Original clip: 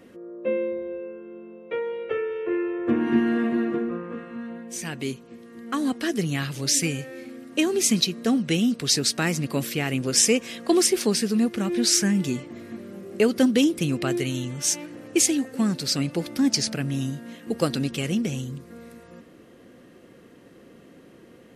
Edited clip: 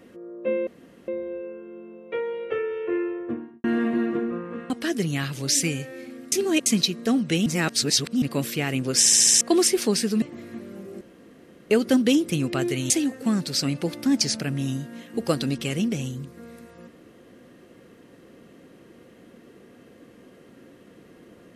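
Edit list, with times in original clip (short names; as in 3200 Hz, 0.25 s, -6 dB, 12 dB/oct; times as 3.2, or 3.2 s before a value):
0.67 insert room tone 0.41 s
2.52–3.23 studio fade out
4.29–5.89 cut
7.51–7.85 reverse
8.65–9.41 reverse
10.18 stutter in place 0.07 s, 6 plays
11.41–12.4 cut
13.19 insert room tone 0.69 s
14.39–15.23 cut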